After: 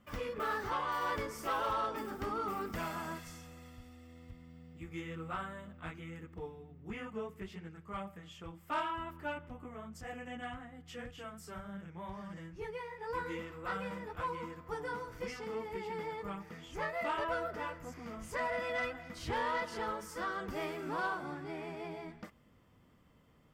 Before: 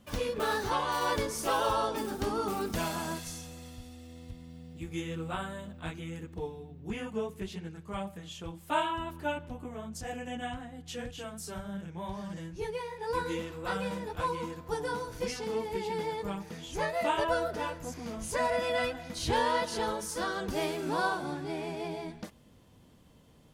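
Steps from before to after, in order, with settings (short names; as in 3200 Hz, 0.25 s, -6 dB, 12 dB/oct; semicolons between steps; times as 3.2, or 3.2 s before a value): thirty-one-band EQ 1250 Hz +9 dB, 2000 Hz +7 dB, 4000 Hz -8 dB, 6300 Hz -6 dB, 10000 Hz -12 dB; soft clip -20.5 dBFS, distortion -18 dB; gain -6.5 dB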